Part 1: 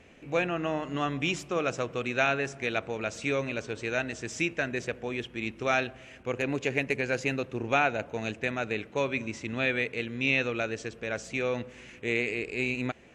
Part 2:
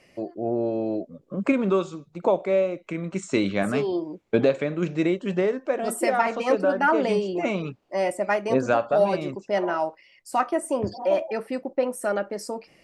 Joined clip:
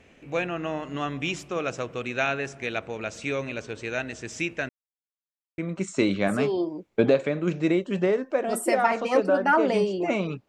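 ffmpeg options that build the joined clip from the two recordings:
ffmpeg -i cue0.wav -i cue1.wav -filter_complex "[0:a]apad=whole_dur=10.48,atrim=end=10.48,asplit=2[link_01][link_02];[link_01]atrim=end=4.69,asetpts=PTS-STARTPTS,afade=type=out:start_time=4.686:duration=0.004:curve=hsin[link_03];[link_02]atrim=start=4.69:end=5.58,asetpts=PTS-STARTPTS,volume=0[link_04];[1:a]atrim=start=2.93:end=7.83,asetpts=PTS-STARTPTS,afade=type=in:duration=0.004:curve=hsin[link_05];[link_03][link_04][link_05]concat=n=3:v=0:a=1" out.wav

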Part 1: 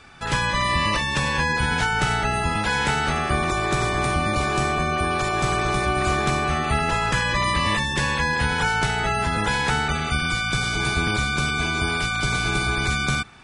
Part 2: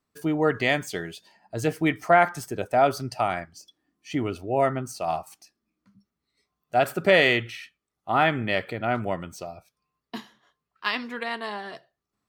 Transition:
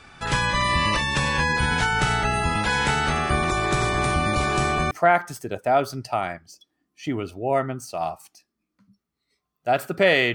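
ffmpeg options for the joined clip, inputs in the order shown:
ffmpeg -i cue0.wav -i cue1.wav -filter_complex "[0:a]apad=whole_dur=10.34,atrim=end=10.34,atrim=end=4.912[link_01];[1:a]atrim=start=1.978:end=7.41[link_02];[link_01][link_02]acrossfade=duration=0.004:curve1=hsin:curve2=hsin" out.wav

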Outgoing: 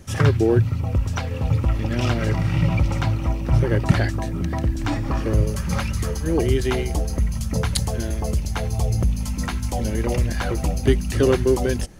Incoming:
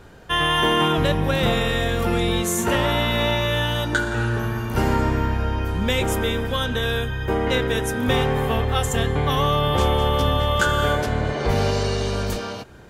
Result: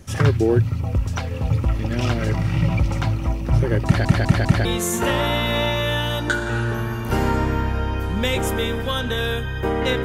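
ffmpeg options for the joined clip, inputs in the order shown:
ffmpeg -i cue0.wav -i cue1.wav -filter_complex "[0:a]apad=whole_dur=10.04,atrim=end=10.04,asplit=4[link_01][link_02][link_03][link_04];[link_01]atrim=end=4.052[link_05];[link_02]atrim=start=3.848:end=4.052[link_06];[link_03]atrim=start=3.848:end=4.052[link_07];[link_04]atrim=start=3.848:end=4.052[link_08];[1:a]atrim=start=2.298:end=7.69[link_09];[link_05][link_06]acrossfade=duration=0.004:curve1=hsin:curve2=hsin[link_10];[link_10][link_07]acrossfade=duration=0.004:curve1=hsin:curve2=hsin[link_11];[link_11][link_08]acrossfade=duration=0.004:curve1=hsin:curve2=hsin[link_12];[link_12][link_09]acrossfade=duration=0.004:curve1=hsin:curve2=hsin" out.wav

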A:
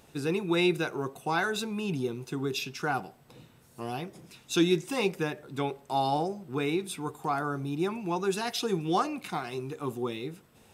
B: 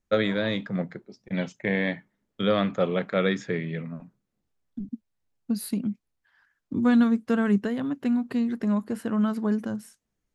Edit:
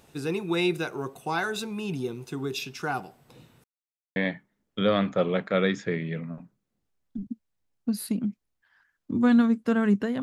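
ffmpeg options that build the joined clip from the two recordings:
ffmpeg -i cue0.wav -i cue1.wav -filter_complex "[0:a]apad=whole_dur=10.22,atrim=end=10.22,asplit=2[link_01][link_02];[link_01]atrim=end=3.64,asetpts=PTS-STARTPTS,afade=type=out:start_time=3.636:duration=0.004:curve=hsin[link_03];[link_02]atrim=start=3.64:end=4.16,asetpts=PTS-STARTPTS,volume=0[link_04];[1:a]atrim=start=1.78:end=7.84,asetpts=PTS-STARTPTS,afade=type=in:duration=0.004:curve=hsin[link_05];[link_03][link_04][link_05]concat=n=3:v=0:a=1" out.wav

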